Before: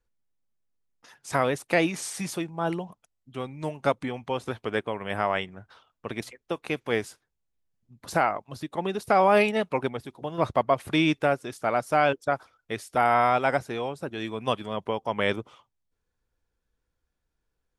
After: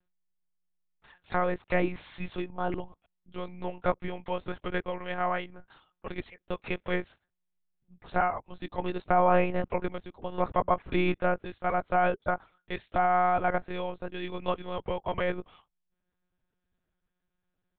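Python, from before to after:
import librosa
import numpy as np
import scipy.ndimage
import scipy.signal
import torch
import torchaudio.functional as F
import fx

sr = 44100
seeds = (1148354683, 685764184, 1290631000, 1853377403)

y = fx.env_lowpass_down(x, sr, base_hz=1900.0, full_db=-21.0)
y = fx.lpc_monotone(y, sr, seeds[0], pitch_hz=180.0, order=10)
y = y * 10.0 ** (-2.5 / 20.0)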